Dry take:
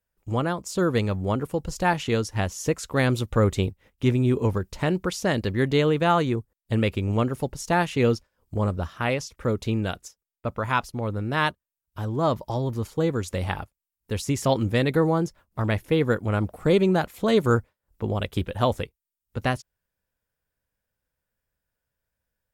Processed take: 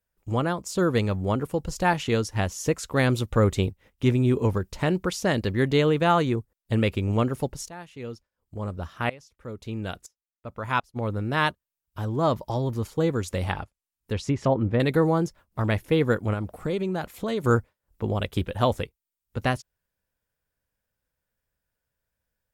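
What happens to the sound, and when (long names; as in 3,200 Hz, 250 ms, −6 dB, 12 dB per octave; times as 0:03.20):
0:07.46–0:10.95: tremolo with a ramp in dB swelling 0.52 Hz → 1.6 Hz, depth 20 dB
0:13.51–0:14.80: treble cut that deepens with the level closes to 1,000 Hz, closed at −17.5 dBFS
0:16.33–0:17.44: downward compressor 2.5 to 1, threshold −27 dBFS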